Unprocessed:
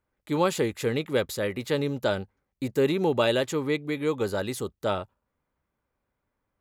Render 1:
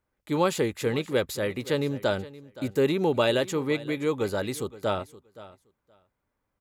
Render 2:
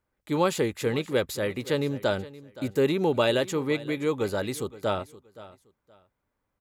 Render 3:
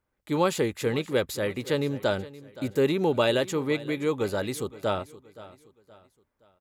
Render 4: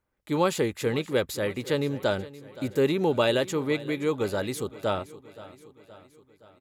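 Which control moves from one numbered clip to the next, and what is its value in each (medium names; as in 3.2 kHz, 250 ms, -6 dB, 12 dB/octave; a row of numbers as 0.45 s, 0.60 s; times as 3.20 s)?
feedback delay, feedback: 15%, 23%, 38%, 56%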